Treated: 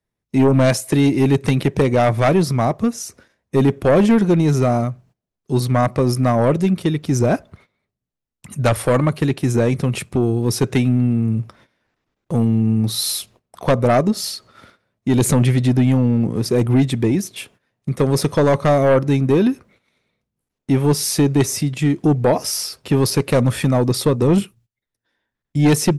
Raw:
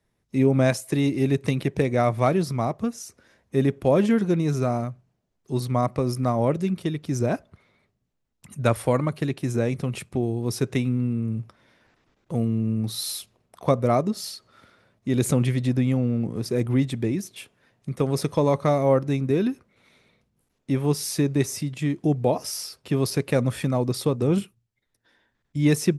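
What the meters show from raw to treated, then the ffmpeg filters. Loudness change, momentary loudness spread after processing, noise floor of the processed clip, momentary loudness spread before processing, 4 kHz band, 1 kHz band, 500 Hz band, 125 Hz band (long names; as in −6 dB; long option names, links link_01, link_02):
+7.0 dB, 9 LU, −82 dBFS, 10 LU, +8.5 dB, +6.5 dB, +6.0 dB, +7.0 dB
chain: -af "agate=range=-17dB:threshold=-55dB:ratio=16:detection=peak,aeval=exprs='0.531*(cos(1*acos(clip(val(0)/0.531,-1,1)))-cos(1*PI/2))+0.188*(cos(5*acos(clip(val(0)/0.531,-1,1)))-cos(5*PI/2))':channel_layout=same"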